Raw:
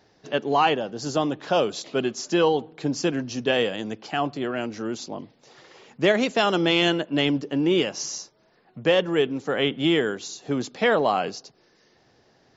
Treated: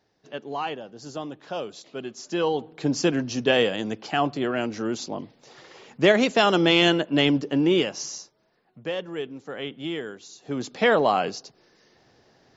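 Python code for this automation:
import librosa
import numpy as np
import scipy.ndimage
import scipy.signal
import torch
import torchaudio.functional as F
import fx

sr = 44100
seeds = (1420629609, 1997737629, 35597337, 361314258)

y = fx.gain(x, sr, db=fx.line((2.01, -10.0), (2.91, 2.0), (7.56, 2.0), (8.89, -10.0), (10.26, -10.0), (10.76, 1.0)))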